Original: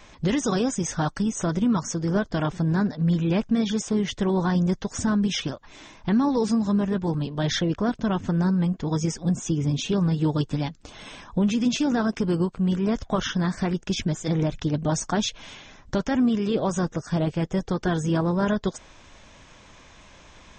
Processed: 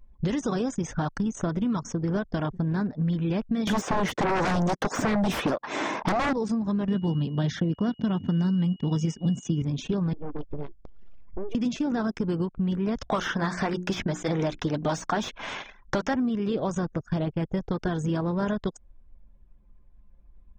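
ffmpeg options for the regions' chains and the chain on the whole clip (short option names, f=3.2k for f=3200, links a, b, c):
-filter_complex "[0:a]asettb=1/sr,asplit=3[a][b][c];[a]atrim=end=3.674[d];[b]atrim=start=3.67:end=6.33,asetpts=PTS-STARTPTS,afade=t=in:d=0.004:c=qsin,afade=t=out:st=2.656:d=0.004:c=qsin,highpass=290,aeval=exprs='0.211*sin(PI/2*5.62*val(0)/0.211)':c=same[e];[c]atrim=start=6.326[f];[d][e]acrossfade=d=0.004:c1=hsin:c2=qsin[g];[g][f]acrossfade=d=0.004:c1=qsin:c2=hsin,asettb=1/sr,asplit=3[h][i][j];[h]atrim=end=6.884[k];[i]atrim=start=6.88:end=9.62,asetpts=PTS-STARTPTS,afade=t=in:d=0.004:c=qsin,afade=t=out:st=2.736:d=0.004:c=qsin,highpass=170,bass=f=250:g=13,treble=f=4k:g=-1,aeval=exprs='val(0)+0.00631*sin(2*PI*2900*n/s)':c=same[l];[j]atrim=start=9.616[m];[k][l]acrossfade=d=0.004:c1=hsin:c2=qsin[n];[n][m]acrossfade=d=0.004:c1=qsin:c2=hsin,asettb=1/sr,asplit=3[o][p][q];[o]atrim=end=10.134[r];[p]atrim=start=10.13:end=11.55,asetpts=PTS-STARTPTS,afade=t=in:d=0.004:c=qsin,afade=t=out:st=1.416:d=0.004:c=qsin,acompressor=threshold=-33dB:ratio=2.5:attack=3.2:release=140:knee=1:detection=peak,aeval=exprs='abs(val(0))':c=same[s];[q]atrim=start=11.546[t];[r][s]acrossfade=d=0.004:c1=hsin:c2=qsin[u];[u][t]acrossfade=d=0.004:c1=qsin:c2=hsin,asettb=1/sr,asplit=3[v][w][x];[v]atrim=end=12.974[y];[w]atrim=start=12.97:end=16.14,asetpts=PTS-STARTPTS,afade=t=in:d=0.004:c=qsin,afade=t=out:st=3.166:d=0.004:c=qsin,highshelf=f=2.8k:g=10,bandreject=f=60:t=h:w=6,bandreject=f=120:t=h:w=6,bandreject=f=180:t=h:w=6,bandreject=f=240:t=h:w=6,bandreject=f=300:t=h:w=6,bandreject=f=360:t=h:w=6,asplit=2[z][aa];[aa]highpass=f=720:p=1,volume=14dB,asoftclip=type=tanh:threshold=-8.5dB[ab];[z][ab]amix=inputs=2:normalize=0,lowpass=f=2.7k:p=1,volume=-6dB[ac];[x]atrim=start=16.136[ad];[y][ac]acrossfade=d=0.004:c1=hsin:c2=qsin[ae];[ae][ad]acrossfade=d=0.004:c1=qsin:c2=hsin,anlmdn=6.31,highshelf=f=4.1k:g=-9.5,acrossover=split=2100|4800[af][ag][ah];[af]acompressor=threshold=-31dB:ratio=4[ai];[ag]acompressor=threshold=-55dB:ratio=4[aj];[ah]acompressor=threshold=-51dB:ratio=4[ak];[ai][aj][ak]amix=inputs=3:normalize=0,volume=5.5dB"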